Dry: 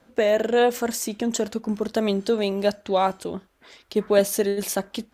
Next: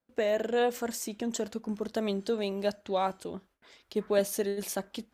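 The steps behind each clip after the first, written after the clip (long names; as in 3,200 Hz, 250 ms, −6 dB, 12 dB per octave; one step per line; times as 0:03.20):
noise gate with hold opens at −48 dBFS
level −8 dB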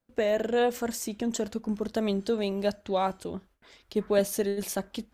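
low-shelf EQ 110 Hz +11.5 dB
level +1.5 dB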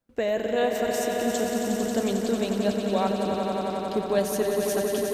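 echo that builds up and dies away 90 ms, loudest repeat 5, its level −7.5 dB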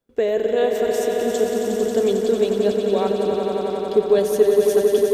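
hollow resonant body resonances 420/3,400 Hz, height 13 dB, ringing for 45 ms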